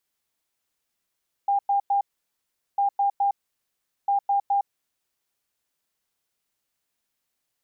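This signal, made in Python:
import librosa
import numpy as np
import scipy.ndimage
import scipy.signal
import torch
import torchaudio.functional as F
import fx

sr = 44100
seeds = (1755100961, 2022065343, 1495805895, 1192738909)

y = fx.beep_pattern(sr, wave='sine', hz=801.0, on_s=0.11, off_s=0.1, beeps=3, pause_s=0.77, groups=3, level_db=-18.5)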